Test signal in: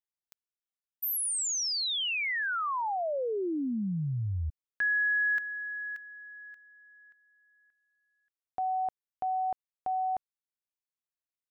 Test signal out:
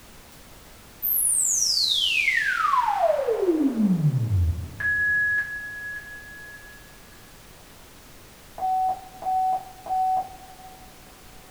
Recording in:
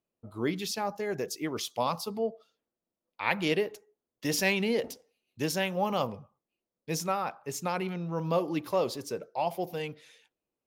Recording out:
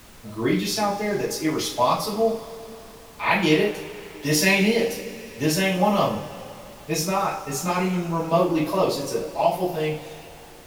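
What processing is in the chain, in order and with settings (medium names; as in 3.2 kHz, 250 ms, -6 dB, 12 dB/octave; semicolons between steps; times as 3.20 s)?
two-slope reverb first 0.36 s, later 3.4 s, from -21 dB, DRR -8 dB; added noise pink -47 dBFS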